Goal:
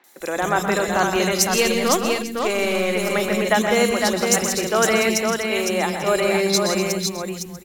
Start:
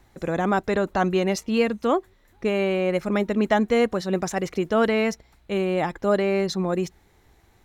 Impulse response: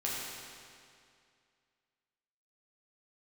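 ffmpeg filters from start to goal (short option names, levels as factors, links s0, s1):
-filter_complex "[0:a]acrossover=split=250|3200[s0][s1][s2];[s2]adelay=40[s3];[s0]adelay=200[s4];[s4][s1][s3]amix=inputs=3:normalize=0,asettb=1/sr,asplit=3[s5][s6][s7];[s5]atrim=end=1.504[s8];[s6]atrim=start=1.5:end=2.93,asetpts=PTS-STARTPTS,afade=t=in:d=0.004:c=qsin,afade=t=out:st=1.426:d=0.004:c=qsin,aeval=exprs='0.316*(cos(1*acos(clip(val(0)/0.316,-1,1)))-cos(1*PI/2))+0.0141*(cos(8*acos(clip(val(0)/0.316,-1,1)))-cos(8*PI/2))':c=same[s9];[s7]atrim=start=2.926[s10];[s8][s9]acrossfade=d=0.004:c1=hsin:c2=qsin[s11];[s11][s10]acrossfade=d=0.004:c1=qsin:c2=hsin,asplit=2[s12][s13];[s13]aecho=0:1:123|164|248|508|641|846:0.335|0.355|0.224|0.596|0.126|0.106[s14];[s12][s14]amix=inputs=2:normalize=0,crystalizer=i=6.5:c=0"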